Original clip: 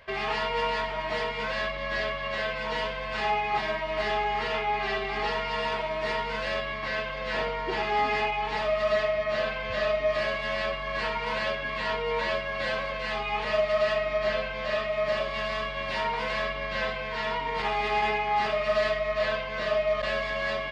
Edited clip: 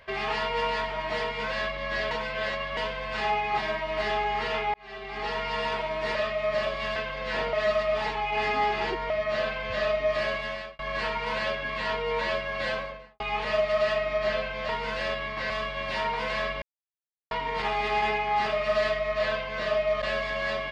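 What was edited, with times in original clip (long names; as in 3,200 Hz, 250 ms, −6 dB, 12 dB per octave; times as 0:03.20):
0:02.11–0:02.77: reverse
0:04.74–0:05.46: fade in
0:06.15–0:06.96: swap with 0:14.69–0:15.50
0:07.53–0:09.10: reverse
0:10.37–0:10.79: fade out
0:12.68–0:13.20: fade out and dull
0:16.62–0:17.31: silence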